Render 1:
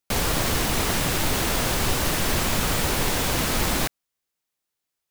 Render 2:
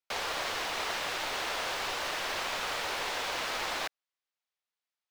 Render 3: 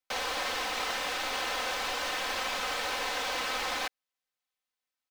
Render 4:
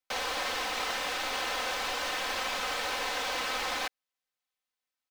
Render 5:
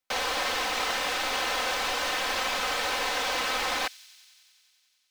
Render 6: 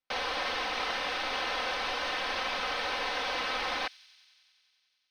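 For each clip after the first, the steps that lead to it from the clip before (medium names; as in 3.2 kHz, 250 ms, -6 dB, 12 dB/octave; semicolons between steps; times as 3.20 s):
three-band isolator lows -23 dB, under 470 Hz, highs -16 dB, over 5.6 kHz; trim -5.5 dB
comb 3.9 ms, depth 60%
no audible change
feedback echo behind a high-pass 92 ms, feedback 80%, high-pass 4.4 kHz, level -16 dB; trim +4 dB
Savitzky-Golay filter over 15 samples; trim -3.5 dB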